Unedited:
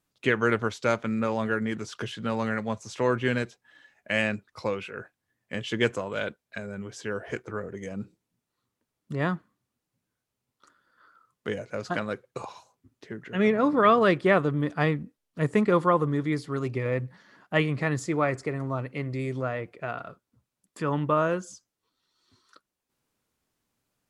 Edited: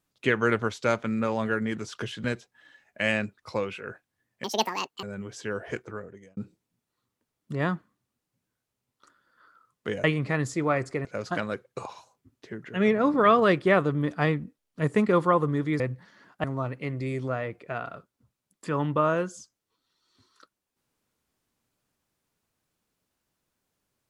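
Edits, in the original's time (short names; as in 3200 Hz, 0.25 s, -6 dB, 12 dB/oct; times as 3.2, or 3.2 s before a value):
2.24–3.34 cut
5.54–6.63 speed 185%
7.33–7.97 fade out linear
16.39–16.92 cut
17.56–18.57 move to 11.64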